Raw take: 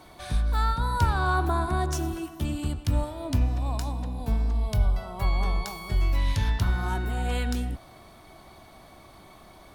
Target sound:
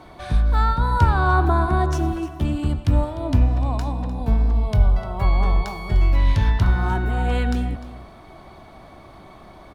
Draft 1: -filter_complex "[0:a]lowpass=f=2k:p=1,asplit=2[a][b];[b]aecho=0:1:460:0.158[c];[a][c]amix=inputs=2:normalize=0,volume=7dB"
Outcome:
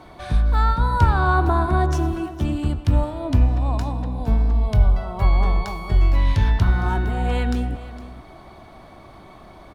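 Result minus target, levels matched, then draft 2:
echo 0.159 s late
-filter_complex "[0:a]lowpass=f=2k:p=1,asplit=2[a][b];[b]aecho=0:1:301:0.158[c];[a][c]amix=inputs=2:normalize=0,volume=7dB"

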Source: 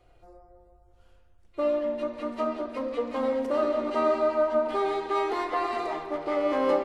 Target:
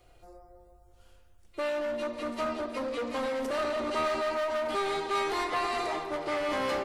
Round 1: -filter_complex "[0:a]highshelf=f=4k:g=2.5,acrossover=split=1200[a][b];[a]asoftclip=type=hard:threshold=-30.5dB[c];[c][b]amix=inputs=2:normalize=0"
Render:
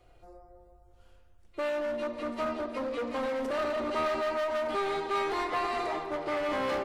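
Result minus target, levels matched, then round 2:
8000 Hz band -5.0 dB
-filter_complex "[0:a]highshelf=f=4k:g=11.5,acrossover=split=1200[a][b];[a]asoftclip=type=hard:threshold=-30.5dB[c];[c][b]amix=inputs=2:normalize=0"

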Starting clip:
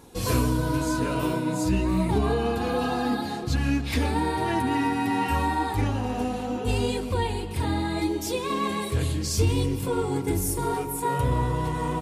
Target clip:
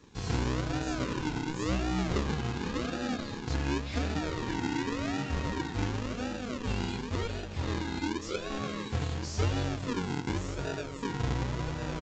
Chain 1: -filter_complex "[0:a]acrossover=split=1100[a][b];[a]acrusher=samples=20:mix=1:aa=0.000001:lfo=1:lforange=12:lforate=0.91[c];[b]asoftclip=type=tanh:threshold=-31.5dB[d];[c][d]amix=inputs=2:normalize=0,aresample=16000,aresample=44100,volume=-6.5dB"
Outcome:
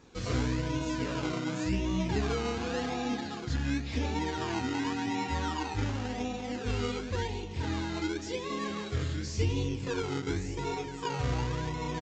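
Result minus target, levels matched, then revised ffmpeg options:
decimation with a swept rate: distortion -10 dB
-filter_complex "[0:a]acrossover=split=1100[a][b];[a]acrusher=samples=58:mix=1:aa=0.000001:lfo=1:lforange=34.8:lforate=0.91[c];[b]asoftclip=type=tanh:threshold=-31.5dB[d];[c][d]amix=inputs=2:normalize=0,aresample=16000,aresample=44100,volume=-6.5dB"

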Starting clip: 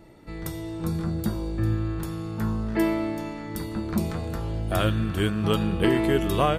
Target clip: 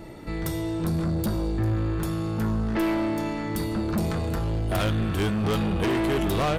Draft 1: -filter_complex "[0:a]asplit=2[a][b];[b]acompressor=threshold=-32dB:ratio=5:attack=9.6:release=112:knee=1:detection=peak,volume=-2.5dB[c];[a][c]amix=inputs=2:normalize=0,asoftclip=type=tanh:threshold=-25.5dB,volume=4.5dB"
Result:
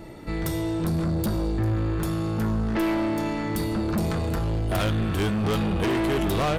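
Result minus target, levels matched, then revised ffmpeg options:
compressor: peak gain reduction -8.5 dB
-filter_complex "[0:a]asplit=2[a][b];[b]acompressor=threshold=-42.5dB:ratio=5:attack=9.6:release=112:knee=1:detection=peak,volume=-2.5dB[c];[a][c]amix=inputs=2:normalize=0,asoftclip=type=tanh:threshold=-25.5dB,volume=4.5dB"

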